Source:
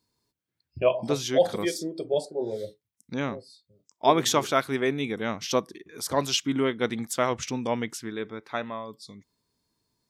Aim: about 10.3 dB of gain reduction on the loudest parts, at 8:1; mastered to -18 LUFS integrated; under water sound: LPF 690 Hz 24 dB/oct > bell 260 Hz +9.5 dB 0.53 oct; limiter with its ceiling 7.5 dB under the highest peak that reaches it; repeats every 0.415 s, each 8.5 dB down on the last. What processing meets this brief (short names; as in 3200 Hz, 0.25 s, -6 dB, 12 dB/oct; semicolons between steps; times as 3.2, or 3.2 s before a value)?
compressor 8:1, threshold -25 dBFS; limiter -22.5 dBFS; LPF 690 Hz 24 dB/oct; bell 260 Hz +9.5 dB 0.53 oct; feedback echo 0.415 s, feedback 38%, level -8.5 dB; gain +13 dB